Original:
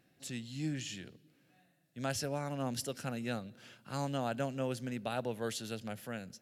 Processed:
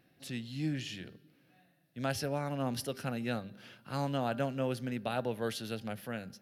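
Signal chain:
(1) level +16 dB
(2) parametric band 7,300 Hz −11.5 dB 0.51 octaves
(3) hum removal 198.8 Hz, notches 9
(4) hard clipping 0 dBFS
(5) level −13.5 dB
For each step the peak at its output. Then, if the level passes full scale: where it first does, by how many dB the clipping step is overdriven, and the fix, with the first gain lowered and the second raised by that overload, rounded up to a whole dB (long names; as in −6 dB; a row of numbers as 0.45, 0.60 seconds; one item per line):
−5.0, −5.0, −5.0, −5.0, −18.5 dBFS
no step passes full scale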